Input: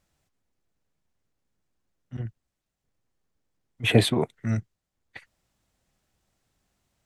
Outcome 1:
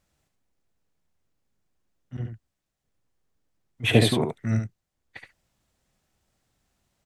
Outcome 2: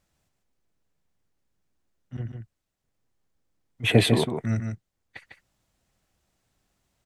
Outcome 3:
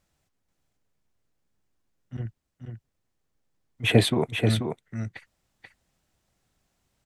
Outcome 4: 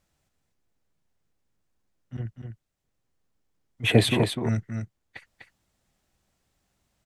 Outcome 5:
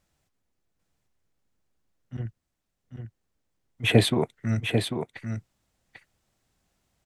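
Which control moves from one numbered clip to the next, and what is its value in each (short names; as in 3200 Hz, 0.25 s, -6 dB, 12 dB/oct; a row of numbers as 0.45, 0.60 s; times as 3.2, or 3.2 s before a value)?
echo, time: 72, 151, 485, 249, 794 ms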